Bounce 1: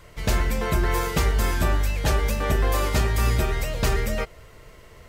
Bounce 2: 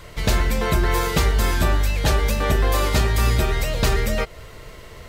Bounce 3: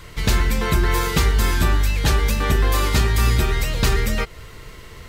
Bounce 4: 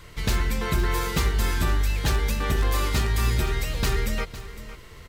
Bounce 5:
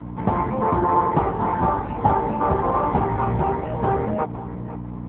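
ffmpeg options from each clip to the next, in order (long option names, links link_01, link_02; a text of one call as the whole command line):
ffmpeg -i in.wav -filter_complex "[0:a]equalizer=frequency=3900:width_type=o:width=0.53:gain=4,asplit=2[link_01][link_02];[link_02]acompressor=threshold=-29dB:ratio=6,volume=2dB[link_03];[link_01][link_03]amix=inputs=2:normalize=0" out.wav
ffmpeg -i in.wav -af "equalizer=frequency=620:width_type=o:width=0.65:gain=-8.5,volume=1.5dB" out.wav
ffmpeg -i in.wav -filter_complex "[0:a]asplit=2[link_01][link_02];[link_02]aeval=exprs='(mod(2.66*val(0)+1,2)-1)/2.66':channel_layout=same,volume=-10dB[link_03];[link_01][link_03]amix=inputs=2:normalize=0,aecho=1:1:508:0.188,volume=-8dB" out.wav
ffmpeg -i in.wav -af "aeval=exprs='val(0)+0.02*(sin(2*PI*60*n/s)+sin(2*PI*2*60*n/s)/2+sin(2*PI*3*60*n/s)/3+sin(2*PI*4*60*n/s)/4+sin(2*PI*5*60*n/s)/5)':channel_layout=same,lowpass=frequency=850:width_type=q:width=5.3,volume=7.5dB" -ar 8000 -c:a libopencore_amrnb -b:a 5900 out.amr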